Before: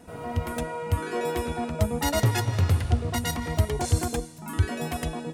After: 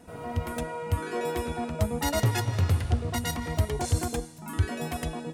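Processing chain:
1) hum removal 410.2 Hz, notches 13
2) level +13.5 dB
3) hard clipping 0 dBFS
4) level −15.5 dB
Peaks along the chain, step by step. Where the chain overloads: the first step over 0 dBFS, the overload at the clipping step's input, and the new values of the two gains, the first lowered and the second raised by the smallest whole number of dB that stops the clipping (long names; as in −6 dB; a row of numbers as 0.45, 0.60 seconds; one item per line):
−8.5, +5.0, 0.0, −15.5 dBFS
step 2, 5.0 dB
step 2 +8.5 dB, step 4 −10.5 dB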